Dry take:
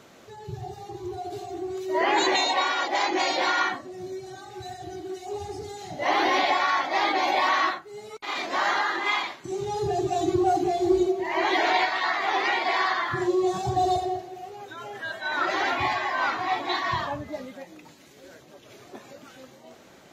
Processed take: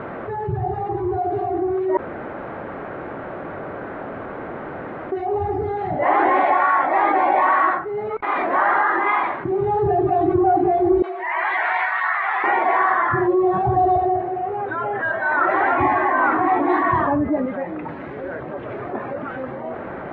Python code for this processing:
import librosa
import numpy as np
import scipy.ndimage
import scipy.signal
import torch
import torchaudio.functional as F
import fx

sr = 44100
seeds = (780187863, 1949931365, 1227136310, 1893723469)

y = fx.highpass(x, sr, hz=1500.0, slope=12, at=(11.02, 12.44))
y = fx.peak_eq(y, sr, hz=300.0, db=11.5, octaves=0.77, at=(15.78, 17.46))
y = fx.edit(y, sr, fx.room_tone_fill(start_s=1.97, length_s=3.15), tone=tone)
y = scipy.signal.sosfilt(scipy.signal.butter(4, 1700.0, 'lowpass', fs=sr, output='sos'), y)
y = fx.peak_eq(y, sr, hz=210.0, db=-3.0, octaves=1.7)
y = fx.env_flatten(y, sr, amount_pct=50)
y = F.gain(torch.from_numpy(y), 5.0).numpy()